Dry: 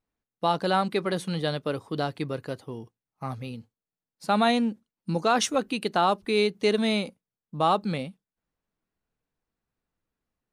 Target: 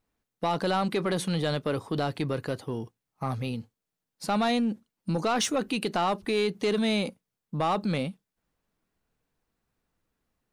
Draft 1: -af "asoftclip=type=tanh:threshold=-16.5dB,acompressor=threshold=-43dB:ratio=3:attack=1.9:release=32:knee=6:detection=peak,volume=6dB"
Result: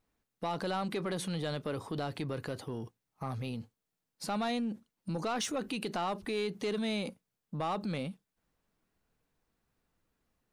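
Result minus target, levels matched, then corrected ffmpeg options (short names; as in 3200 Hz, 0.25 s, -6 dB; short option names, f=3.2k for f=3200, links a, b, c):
compressor: peak gain reduction +7.5 dB
-af "asoftclip=type=tanh:threshold=-16.5dB,acompressor=threshold=-31.5dB:ratio=3:attack=1.9:release=32:knee=6:detection=peak,volume=6dB"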